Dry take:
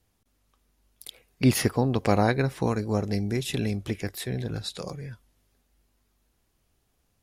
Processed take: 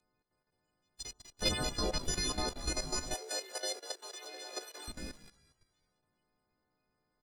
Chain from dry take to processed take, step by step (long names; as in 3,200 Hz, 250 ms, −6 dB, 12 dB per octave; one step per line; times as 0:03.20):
every partial snapped to a pitch grid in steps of 3 semitones
gate on every frequency bin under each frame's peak −15 dB weak
on a send: echo with shifted repeats 194 ms, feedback 43%, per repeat −57 Hz, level −11 dB
on the sum: output level in coarse steps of 10 dB
flat-topped bell 5,900 Hz +13.5 dB
leveller curve on the samples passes 2
0:03.14–0:04.88: Chebyshev high-pass filter 380 Hz, order 4
spectral tilt −3.5 dB per octave
one half of a high-frequency compander encoder only
level −4.5 dB